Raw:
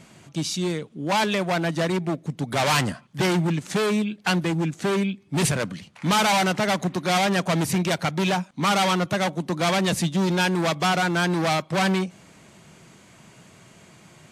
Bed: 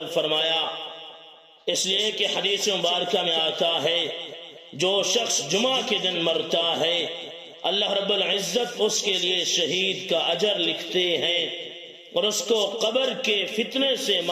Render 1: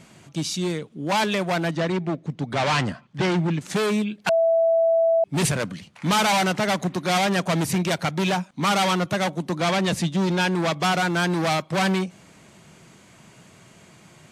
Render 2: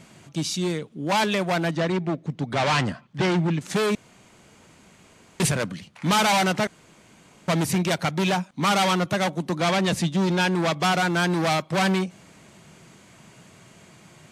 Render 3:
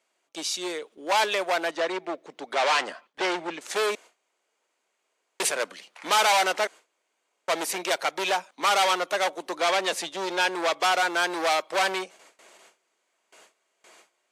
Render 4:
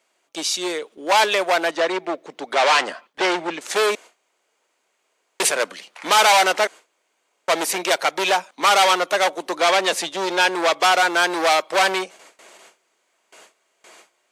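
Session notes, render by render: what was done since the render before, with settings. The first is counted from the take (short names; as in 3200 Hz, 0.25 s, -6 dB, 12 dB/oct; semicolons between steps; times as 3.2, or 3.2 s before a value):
1.71–3.61 air absorption 89 m; 4.29–5.24 bleep 660 Hz -15.5 dBFS; 9.57–10.83 high shelf 9500 Hz -9 dB
3.95–5.4 room tone; 6.67–7.48 room tone
HPF 410 Hz 24 dB/oct; gate with hold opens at -42 dBFS
gain +6.5 dB; limiter -3 dBFS, peak gain reduction 1.5 dB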